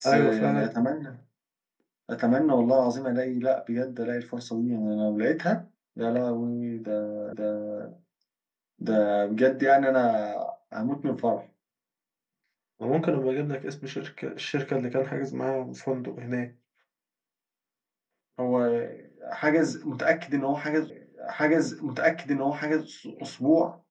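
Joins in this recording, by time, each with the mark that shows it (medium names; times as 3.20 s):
7.33 s: repeat of the last 0.52 s
20.90 s: repeat of the last 1.97 s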